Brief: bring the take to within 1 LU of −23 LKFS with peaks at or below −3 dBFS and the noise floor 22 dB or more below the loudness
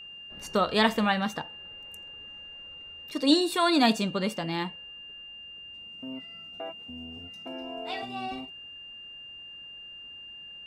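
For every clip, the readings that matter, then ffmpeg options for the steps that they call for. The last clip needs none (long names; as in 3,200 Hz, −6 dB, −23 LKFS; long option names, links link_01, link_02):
interfering tone 2,800 Hz; level of the tone −42 dBFS; integrated loudness −28.5 LKFS; sample peak −8.0 dBFS; target loudness −23.0 LKFS
→ -af "bandreject=frequency=2800:width=30"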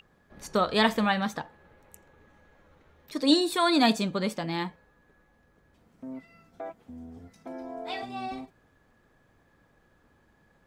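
interfering tone none found; integrated loudness −27.0 LKFS; sample peak −8.5 dBFS; target loudness −23.0 LKFS
→ -af "volume=4dB"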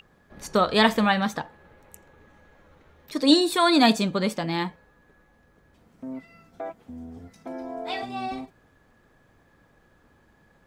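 integrated loudness −23.0 LKFS; sample peak −4.5 dBFS; background noise floor −61 dBFS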